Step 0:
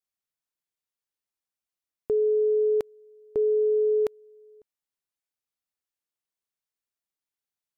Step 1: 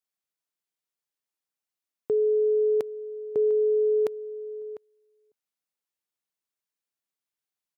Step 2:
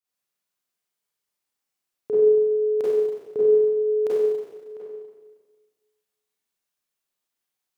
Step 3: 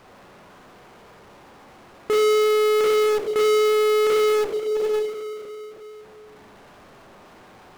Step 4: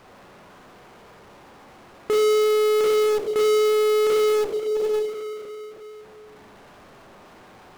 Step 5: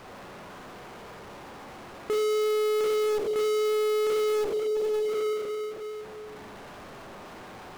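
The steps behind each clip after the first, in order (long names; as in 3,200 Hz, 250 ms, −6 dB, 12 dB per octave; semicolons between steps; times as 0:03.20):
high-pass filter 120 Hz; slap from a distant wall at 120 metres, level −14 dB
four-comb reverb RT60 1.4 s, combs from 31 ms, DRR −9 dB; level −3 dB
low-pass filter 1,000 Hz 12 dB per octave; in parallel at −4 dB: fuzz pedal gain 36 dB, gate −42 dBFS; on the sum: power curve on the samples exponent 0.35; level −8.5 dB
dynamic equaliser 1,800 Hz, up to −4 dB, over −35 dBFS, Q 0.83
brickwall limiter −27.5 dBFS, peak gain reduction 11.5 dB; level +4 dB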